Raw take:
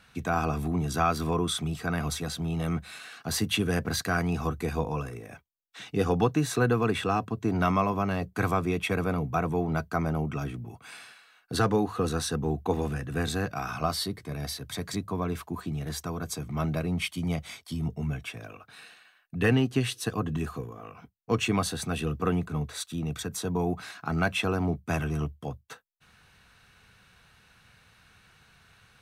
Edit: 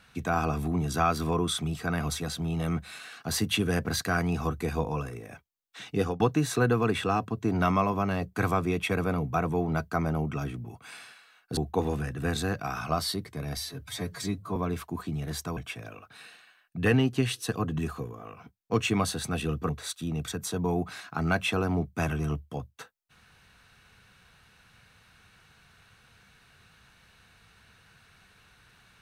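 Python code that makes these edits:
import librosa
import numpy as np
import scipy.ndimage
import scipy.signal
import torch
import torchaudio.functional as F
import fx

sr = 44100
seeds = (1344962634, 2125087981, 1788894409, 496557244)

y = fx.edit(x, sr, fx.fade_out_to(start_s=5.93, length_s=0.27, curve='qsin', floor_db=-24.0),
    fx.cut(start_s=11.57, length_s=0.92),
    fx.stretch_span(start_s=14.49, length_s=0.66, factor=1.5),
    fx.cut(start_s=16.16, length_s=1.99),
    fx.cut(start_s=22.27, length_s=0.33), tone=tone)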